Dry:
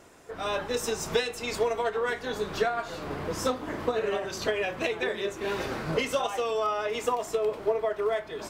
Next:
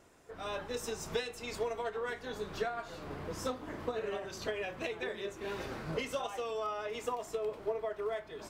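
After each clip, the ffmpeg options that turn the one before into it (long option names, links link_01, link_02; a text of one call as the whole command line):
ffmpeg -i in.wav -af "lowshelf=frequency=130:gain=4.5,volume=-9dB" out.wav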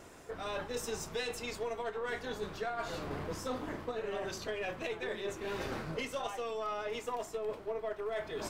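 ffmpeg -i in.wav -af "aeval=exprs='0.0794*(cos(1*acos(clip(val(0)/0.0794,-1,1)))-cos(1*PI/2))+0.00251*(cos(8*acos(clip(val(0)/0.0794,-1,1)))-cos(8*PI/2))':channel_layout=same,areverse,acompressor=threshold=-44dB:ratio=6,areverse,volume=9dB" out.wav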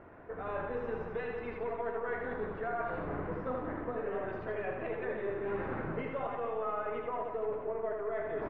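ffmpeg -i in.wav -af "lowpass=frequency=1900:width=0.5412,lowpass=frequency=1900:width=1.3066,aecho=1:1:80|180|305|461.2|656.6:0.631|0.398|0.251|0.158|0.1" out.wav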